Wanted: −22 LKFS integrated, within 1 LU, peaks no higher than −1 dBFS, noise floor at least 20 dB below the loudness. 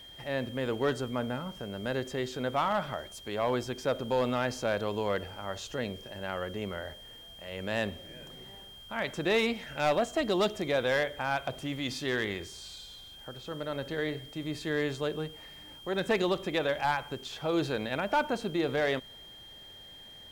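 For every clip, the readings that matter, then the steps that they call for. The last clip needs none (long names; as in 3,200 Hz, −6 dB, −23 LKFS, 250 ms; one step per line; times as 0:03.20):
share of clipped samples 0.3%; peaks flattened at −20.5 dBFS; interfering tone 3,200 Hz; level of the tone −48 dBFS; integrated loudness −32.0 LKFS; sample peak −20.5 dBFS; target loudness −22.0 LKFS
→ clipped peaks rebuilt −20.5 dBFS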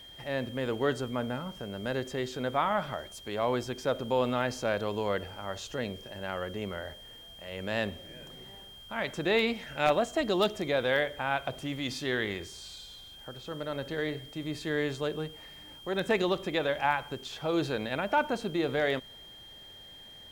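share of clipped samples 0.0%; interfering tone 3,200 Hz; level of the tone −48 dBFS
→ notch filter 3,200 Hz, Q 30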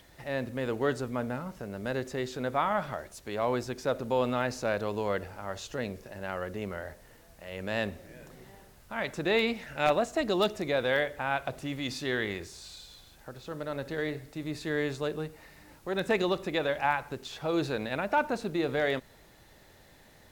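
interfering tone none found; integrated loudness −31.5 LKFS; sample peak −11.5 dBFS; target loudness −22.0 LKFS
→ level +9.5 dB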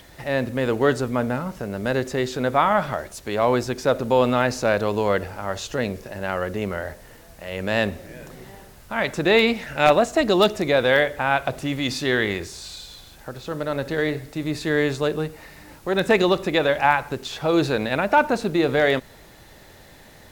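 integrated loudness −22.0 LKFS; sample peak −2.0 dBFS; background noise floor −47 dBFS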